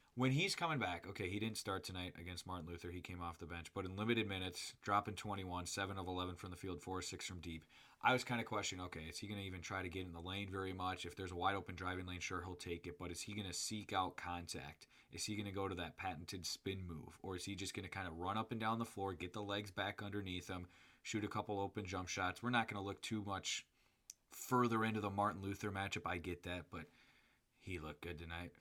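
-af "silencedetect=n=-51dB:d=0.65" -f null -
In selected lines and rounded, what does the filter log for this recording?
silence_start: 26.84
silence_end: 27.67 | silence_duration: 0.83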